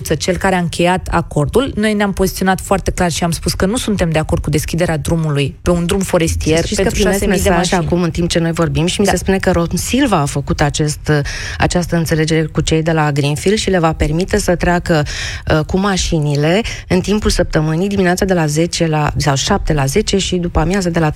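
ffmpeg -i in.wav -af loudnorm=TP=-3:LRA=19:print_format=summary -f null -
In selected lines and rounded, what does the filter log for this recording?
Input Integrated:    -14.8 LUFS
Input True Peak:      -1.1 dBTP
Input LRA:             1.4 LU
Input Threshold:     -24.8 LUFS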